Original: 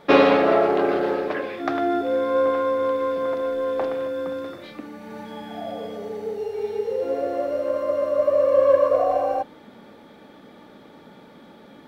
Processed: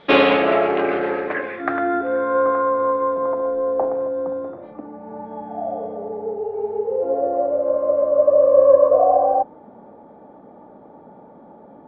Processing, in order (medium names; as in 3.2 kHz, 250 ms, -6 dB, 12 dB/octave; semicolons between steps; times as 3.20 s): overload inside the chain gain 7 dB; low-pass sweep 3.3 kHz -> 800 Hz, 0.06–3.74 s